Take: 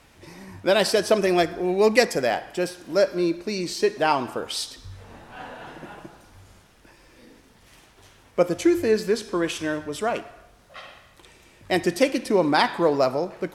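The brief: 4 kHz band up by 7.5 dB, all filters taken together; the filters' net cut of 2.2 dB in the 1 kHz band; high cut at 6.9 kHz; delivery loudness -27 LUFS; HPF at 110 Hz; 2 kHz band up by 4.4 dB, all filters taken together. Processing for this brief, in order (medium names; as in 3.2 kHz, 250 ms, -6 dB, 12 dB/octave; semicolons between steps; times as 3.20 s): high-pass 110 Hz; low-pass 6.9 kHz; peaking EQ 1 kHz -4.5 dB; peaking EQ 2 kHz +4.5 dB; peaking EQ 4 kHz +9 dB; trim -5 dB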